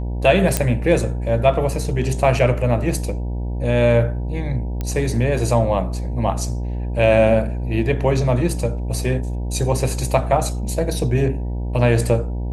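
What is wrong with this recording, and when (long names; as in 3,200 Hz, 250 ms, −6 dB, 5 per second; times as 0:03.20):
mains buzz 60 Hz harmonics 16 −24 dBFS
0:00.57: click −2 dBFS
0:04.81: click −12 dBFS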